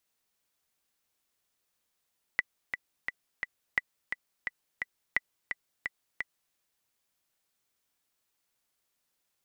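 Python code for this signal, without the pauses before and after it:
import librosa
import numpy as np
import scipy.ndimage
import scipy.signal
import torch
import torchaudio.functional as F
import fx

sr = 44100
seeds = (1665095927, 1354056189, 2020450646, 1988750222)

y = fx.click_track(sr, bpm=173, beats=4, bars=3, hz=1980.0, accent_db=7.0, level_db=-12.0)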